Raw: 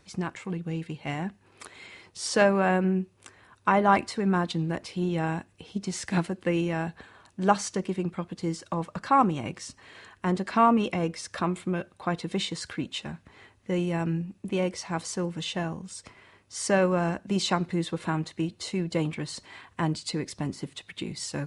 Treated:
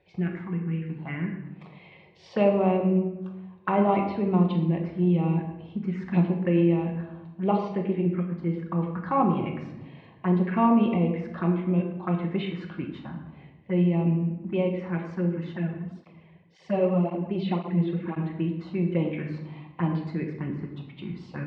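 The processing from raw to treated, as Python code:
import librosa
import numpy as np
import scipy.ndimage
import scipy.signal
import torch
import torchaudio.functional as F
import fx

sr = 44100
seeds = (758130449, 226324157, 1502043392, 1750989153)

y = scipy.signal.sosfilt(scipy.signal.butter(4, 2700.0, 'lowpass', fs=sr, output='sos'), x)
y = fx.env_phaser(y, sr, low_hz=210.0, high_hz=1600.0, full_db=-24.0)
y = scipy.signal.sosfilt(scipy.signal.butter(2, 73.0, 'highpass', fs=sr, output='sos'), y)
y = fx.room_shoebox(y, sr, seeds[0], volume_m3=460.0, walls='mixed', distance_m=1.0)
y = fx.flanger_cancel(y, sr, hz=1.9, depth_ms=4.7, at=(15.56, 18.16), fade=0.02)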